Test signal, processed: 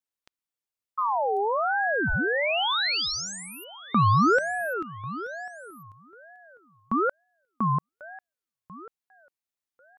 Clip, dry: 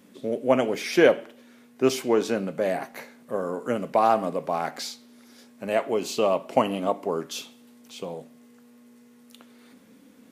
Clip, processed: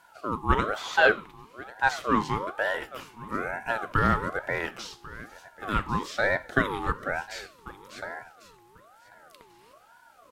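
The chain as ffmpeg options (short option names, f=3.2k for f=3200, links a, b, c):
-filter_complex "[0:a]aecho=1:1:1093|2186:0.112|0.0191,acrossover=split=5000[a][b];[b]acompressor=threshold=-47dB:ratio=4:attack=1:release=60[c];[a][c]amix=inputs=2:normalize=0,aeval=exprs='val(0)*sin(2*PI*900*n/s+900*0.35/1.1*sin(2*PI*1.1*n/s))':c=same"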